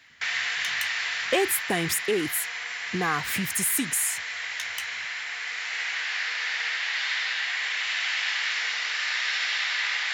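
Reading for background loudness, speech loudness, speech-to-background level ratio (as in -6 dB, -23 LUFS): -27.5 LUFS, -27.0 LUFS, 0.5 dB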